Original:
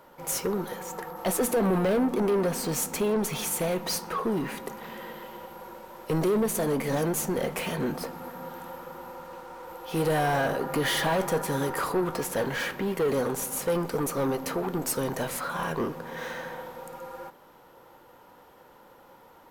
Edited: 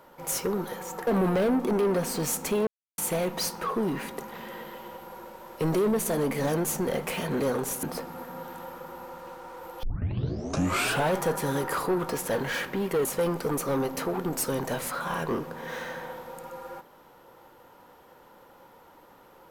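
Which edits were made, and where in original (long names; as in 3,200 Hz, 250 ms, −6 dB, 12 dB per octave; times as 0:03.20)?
0:01.07–0:01.56: remove
0:03.16–0:03.47: silence
0:09.89: tape start 1.32 s
0:13.11–0:13.54: move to 0:07.89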